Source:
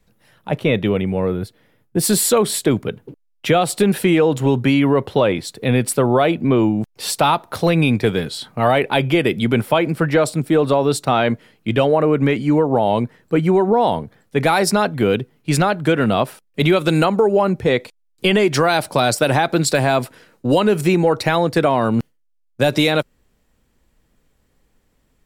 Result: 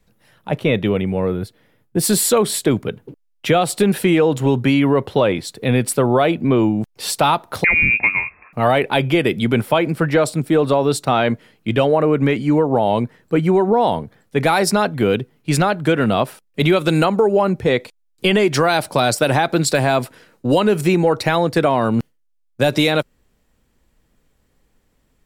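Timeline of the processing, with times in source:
7.64–8.53 inverted band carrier 2600 Hz

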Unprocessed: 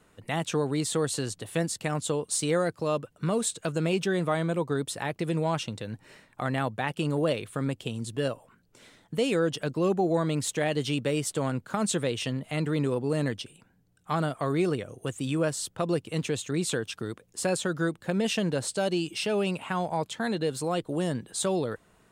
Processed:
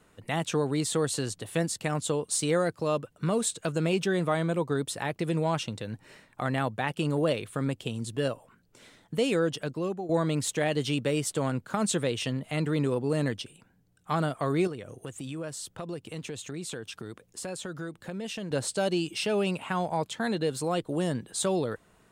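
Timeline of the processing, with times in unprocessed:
9.17–10.09 fade out equal-power, to -13.5 dB
14.67–18.51 compressor 2.5:1, threshold -37 dBFS

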